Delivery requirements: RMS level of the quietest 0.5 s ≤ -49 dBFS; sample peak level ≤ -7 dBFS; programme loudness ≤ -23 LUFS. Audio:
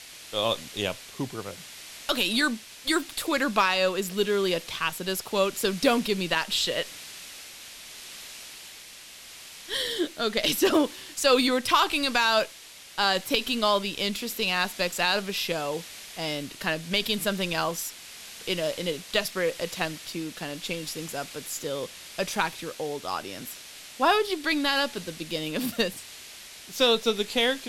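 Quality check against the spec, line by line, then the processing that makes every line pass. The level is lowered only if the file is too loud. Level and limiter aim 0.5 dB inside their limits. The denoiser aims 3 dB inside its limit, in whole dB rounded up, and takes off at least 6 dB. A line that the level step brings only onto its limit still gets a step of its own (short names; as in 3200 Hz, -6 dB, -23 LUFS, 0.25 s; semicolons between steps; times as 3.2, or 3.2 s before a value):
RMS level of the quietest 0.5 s -47 dBFS: fail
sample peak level -8.0 dBFS: OK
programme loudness -26.5 LUFS: OK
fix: denoiser 6 dB, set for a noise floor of -47 dBFS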